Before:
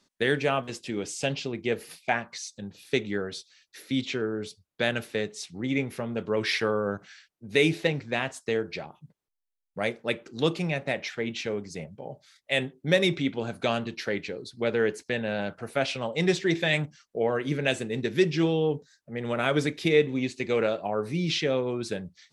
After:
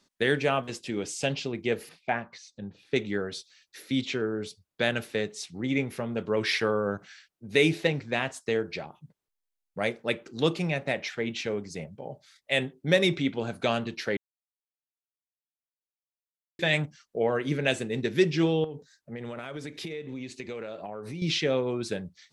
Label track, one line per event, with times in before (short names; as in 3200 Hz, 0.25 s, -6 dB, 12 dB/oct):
1.890000	2.960000	tape spacing loss at 10 kHz 21 dB
14.170000	16.590000	mute
18.640000	21.220000	compressor 10:1, threshold -33 dBFS